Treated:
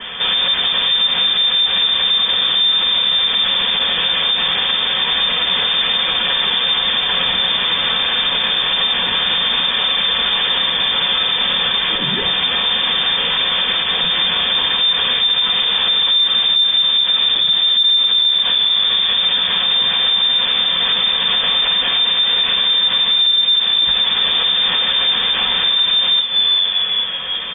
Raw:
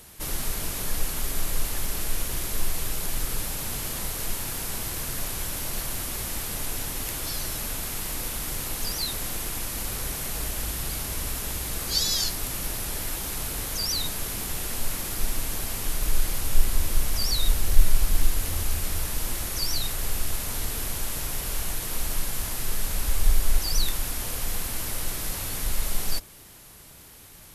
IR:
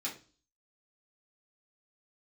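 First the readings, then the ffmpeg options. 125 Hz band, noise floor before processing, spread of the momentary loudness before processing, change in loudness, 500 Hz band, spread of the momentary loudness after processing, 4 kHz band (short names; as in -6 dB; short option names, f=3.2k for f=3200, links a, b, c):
-5.0 dB, -48 dBFS, 4 LU, +16.0 dB, +9.5 dB, 3 LU, +24.0 dB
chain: -filter_complex "[0:a]asplit=5[a][b][c][d][e];[b]adelay=384,afreqshift=-98,volume=-17dB[f];[c]adelay=768,afreqshift=-196,volume=-23.6dB[g];[d]adelay=1152,afreqshift=-294,volume=-30.1dB[h];[e]adelay=1536,afreqshift=-392,volume=-36.7dB[i];[a][f][g][h][i]amix=inputs=5:normalize=0,asoftclip=type=tanh:threshold=-9dB,acompressor=threshold=-32dB:ratio=4[j];[1:a]atrim=start_sample=2205,asetrate=61740,aresample=44100[k];[j][k]afir=irnorm=-1:irlink=0,acontrast=68,lowshelf=f=120:g=8.5,lowpass=f=3.1k:t=q:w=0.5098,lowpass=f=3.1k:t=q:w=0.6013,lowpass=f=3.1k:t=q:w=0.9,lowpass=f=3.1k:t=q:w=2.563,afreqshift=-3600,alimiter=level_in=27.5dB:limit=-1dB:release=50:level=0:latency=1,volume=-7dB"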